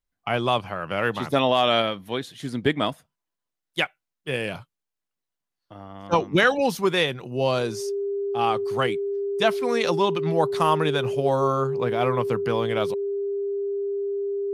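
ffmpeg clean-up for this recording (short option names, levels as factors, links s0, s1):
-af "bandreject=f=400:w=30"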